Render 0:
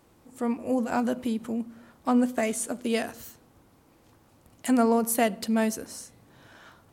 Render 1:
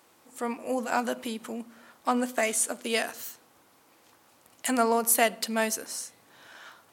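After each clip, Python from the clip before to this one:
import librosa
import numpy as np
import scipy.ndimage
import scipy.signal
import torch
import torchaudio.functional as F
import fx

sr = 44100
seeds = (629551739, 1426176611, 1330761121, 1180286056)

y = fx.highpass(x, sr, hz=1000.0, slope=6)
y = F.gain(torch.from_numpy(y), 5.5).numpy()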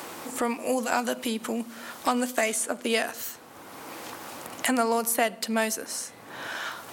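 y = fx.band_squash(x, sr, depth_pct=70)
y = F.gain(torch.from_numpy(y), 2.0).numpy()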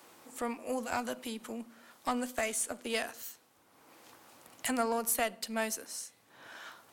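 y = fx.diode_clip(x, sr, knee_db=-14.0)
y = fx.band_widen(y, sr, depth_pct=70)
y = F.gain(torch.from_numpy(y), -8.0).numpy()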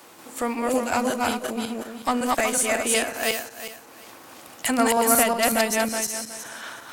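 y = fx.reverse_delay_fb(x, sr, ms=184, feedback_pct=48, wet_db=0)
y = F.gain(torch.from_numpy(y), 9.0).numpy()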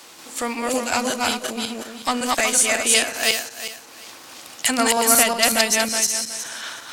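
y = fx.peak_eq(x, sr, hz=4800.0, db=11.0, octaves=2.4)
y = F.gain(torch.from_numpy(y), -1.0).numpy()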